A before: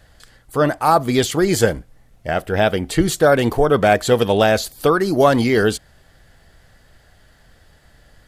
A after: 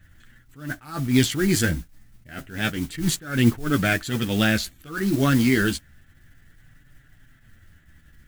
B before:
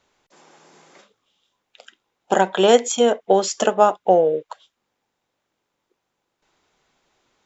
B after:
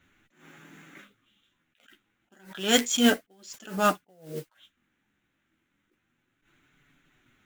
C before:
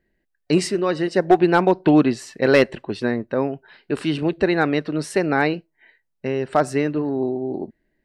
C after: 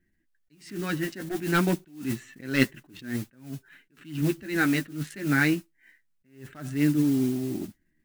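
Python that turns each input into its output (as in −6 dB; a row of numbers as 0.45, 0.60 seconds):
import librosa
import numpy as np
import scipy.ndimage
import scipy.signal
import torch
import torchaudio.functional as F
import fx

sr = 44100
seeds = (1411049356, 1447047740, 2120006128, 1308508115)

y = fx.wiener(x, sr, points=9)
y = fx.band_shelf(y, sr, hz=670.0, db=-15.5, octaves=1.7)
y = fx.mod_noise(y, sr, seeds[0], snr_db=18)
y = fx.chorus_voices(y, sr, voices=2, hz=0.29, base_ms=11, depth_ms=4.3, mix_pct=35)
y = fx.attack_slew(y, sr, db_per_s=130.0)
y = librosa.util.normalize(y) * 10.0 ** (-6 / 20.0)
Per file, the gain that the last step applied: +2.5, +10.0, +3.0 decibels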